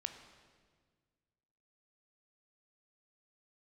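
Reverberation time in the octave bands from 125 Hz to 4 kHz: 2.3 s, 2.1 s, 1.8 s, 1.5 s, 1.4 s, 1.4 s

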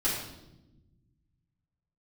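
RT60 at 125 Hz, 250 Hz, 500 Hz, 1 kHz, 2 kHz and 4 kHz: 2.5 s, 1.9 s, 1.2 s, 0.75 s, 0.70 s, 0.80 s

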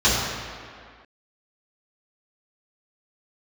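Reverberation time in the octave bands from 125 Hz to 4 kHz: 1.6 s, 1.9 s, 1.9 s, 2.2 s, 2.1 s, 1.5 s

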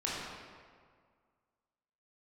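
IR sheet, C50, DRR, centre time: -2.5 dB, -7.0 dB, 121 ms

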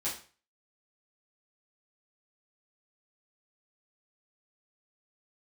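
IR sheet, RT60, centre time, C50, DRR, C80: 0.40 s, 30 ms, 7.0 dB, -9.5 dB, 12.5 dB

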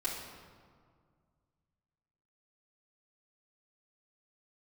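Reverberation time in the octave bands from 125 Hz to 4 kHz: 2.8 s, 2.3 s, 2.0 s, 1.9 s, 1.4 s, 1.1 s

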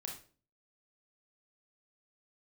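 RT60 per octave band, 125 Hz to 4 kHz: 0.55 s, 0.55 s, 0.45 s, 0.35 s, 0.35 s, 0.35 s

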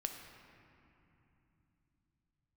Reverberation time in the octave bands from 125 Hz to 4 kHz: 5.1 s, 4.6 s, 3.0 s, 2.9 s, 2.7 s, 1.8 s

